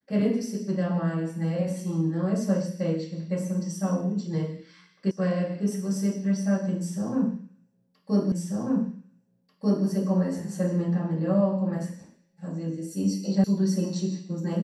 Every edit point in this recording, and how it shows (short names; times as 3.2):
5.11 sound cut off
8.32 repeat of the last 1.54 s
13.44 sound cut off